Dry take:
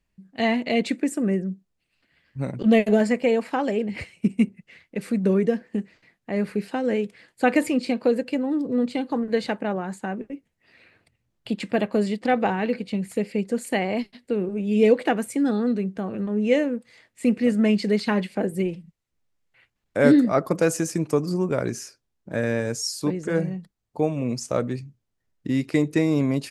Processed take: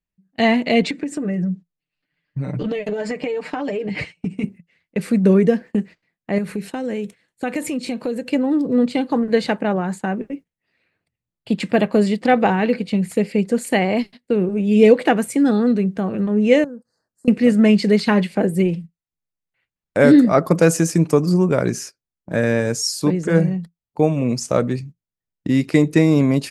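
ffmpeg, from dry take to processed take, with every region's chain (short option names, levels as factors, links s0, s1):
-filter_complex "[0:a]asettb=1/sr,asplit=3[s0][s1][s2];[s0]atrim=end=0.824[s3];[s1]atrim=start=0.82:end=4.44,asetpts=PTS-STARTPTS,afade=t=in:d=0.004:c=qsin,afade=t=out:st=3.616:d=0.004:c=qsin,lowpass=6100,aecho=1:1:6.7:0.8,atrim=end_sample=159642,acompressor=threshold=0.0501:ratio=16:attack=3.2:release=140:knee=1:detection=peak[s4];[s2]atrim=start=4.436[s5];[s3][s4]acrossfade=d=0.004:c1=hsin:c2=qsin[s6];[s6][s5]acrossfade=d=0.004:c1=qsin:c2=hsin,asettb=1/sr,asplit=3[s7][s8][s9];[s7]atrim=end=6.384[s10];[s8]atrim=start=6.38:end=8.3,asetpts=PTS-STARTPTS,afade=t=in:d=0.004:c=qsin,afade=t=out:st=1.916:d=0.004:c=qsin,bass=f=250:g=3,treble=f=4000:g=6,bandreject=f=4800:w=7.2,acompressor=threshold=0.0282:ratio=2.5:attack=3.2:release=140:knee=1:detection=peak[s11];[s9]atrim=start=8.296[s12];[s10][s11]acrossfade=d=0.004:c1=hsin:c2=qsin[s13];[s13][s12]acrossfade=d=0.004:c1=qsin:c2=hsin,asettb=1/sr,asplit=3[s14][s15][s16];[s14]atrim=end=16.644[s17];[s15]atrim=start=16.64:end=17.28,asetpts=PTS-STARTPTS,afade=t=in:d=0.004:c=qsin,afade=t=out:st=0.636:d=0.004:c=qsin,acompressor=threshold=0.00708:ratio=2.5:attack=3.2:release=140:knee=1:detection=peak,asuperstop=centerf=2700:order=12:qfactor=1[s18];[s16]atrim=start=17.276[s19];[s17][s18]acrossfade=d=0.004:c1=hsin:c2=qsin[s20];[s20][s19]acrossfade=d=0.004:c1=qsin:c2=hsin,agate=range=0.112:threshold=0.01:ratio=16:detection=peak,equalizer=f=170:w=7.1:g=6.5,alimiter=level_in=2.24:limit=0.891:release=50:level=0:latency=1,volume=0.891"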